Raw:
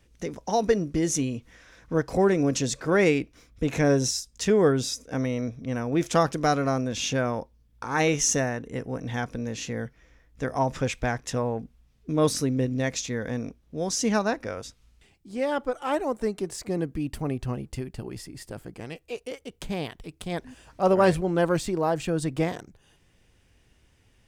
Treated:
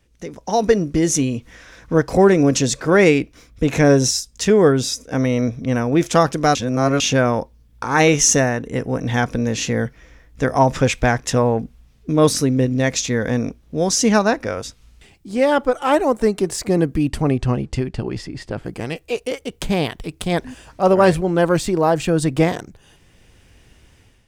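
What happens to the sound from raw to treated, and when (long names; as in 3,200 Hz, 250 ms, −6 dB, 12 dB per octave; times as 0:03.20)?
0:06.55–0:07.00: reverse
0:17.08–0:18.64: low-pass filter 9,300 Hz → 3,700 Hz
whole clip: automatic gain control gain up to 11.5 dB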